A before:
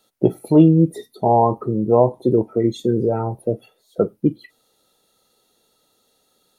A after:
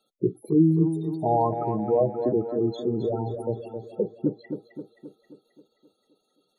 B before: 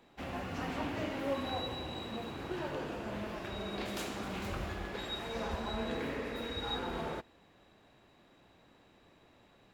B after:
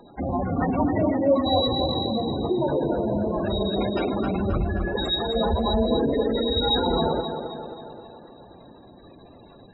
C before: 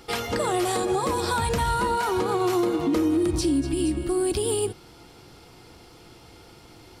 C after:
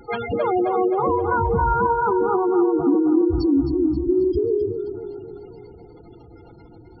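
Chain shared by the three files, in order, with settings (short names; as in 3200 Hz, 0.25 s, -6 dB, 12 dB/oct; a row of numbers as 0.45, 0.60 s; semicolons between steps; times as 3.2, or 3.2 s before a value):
spectral gate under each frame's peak -10 dB strong; on a send: tape echo 0.265 s, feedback 59%, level -7 dB, low-pass 4800 Hz; on the sum: normalise peaks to -9 dBFS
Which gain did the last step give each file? -7.0, +16.0, +5.0 dB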